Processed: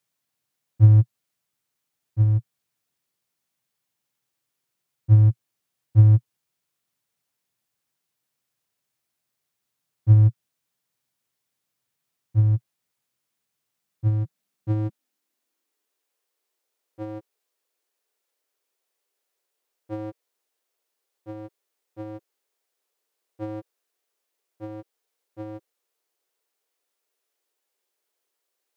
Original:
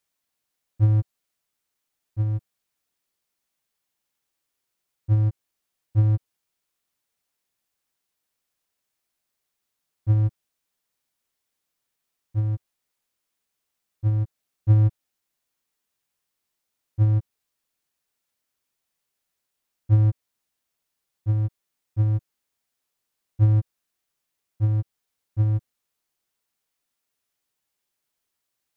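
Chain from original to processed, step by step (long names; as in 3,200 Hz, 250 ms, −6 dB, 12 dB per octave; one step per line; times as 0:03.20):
high-pass filter sweep 120 Hz → 420 Hz, 0:13.74–0:16.15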